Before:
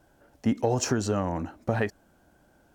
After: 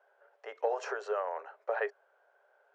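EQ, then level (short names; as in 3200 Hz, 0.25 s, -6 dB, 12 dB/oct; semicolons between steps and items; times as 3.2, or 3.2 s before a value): rippled Chebyshev high-pass 400 Hz, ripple 3 dB; LPF 1500 Hz 12 dB/oct; tilt +2.5 dB/oct; 0.0 dB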